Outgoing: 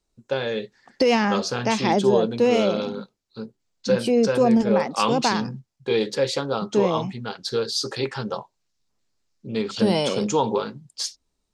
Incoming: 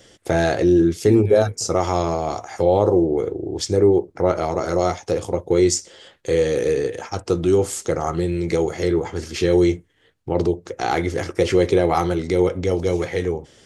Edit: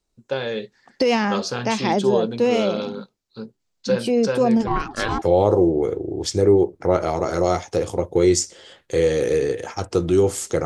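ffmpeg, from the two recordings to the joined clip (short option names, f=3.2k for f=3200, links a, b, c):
-filter_complex "[0:a]asplit=3[a][b][c];[a]afade=t=out:st=4.66:d=0.02[d];[b]aeval=exprs='val(0)*sin(2*PI*560*n/s)':c=same,afade=t=in:st=4.66:d=0.02,afade=t=out:st=5.22:d=0.02[e];[c]afade=t=in:st=5.22:d=0.02[f];[d][e][f]amix=inputs=3:normalize=0,apad=whole_dur=10.65,atrim=end=10.65,atrim=end=5.222[g];[1:a]atrim=start=2.568:end=8[h];[g][h]acrossfade=d=0.004:c1=hsin:c2=hsin"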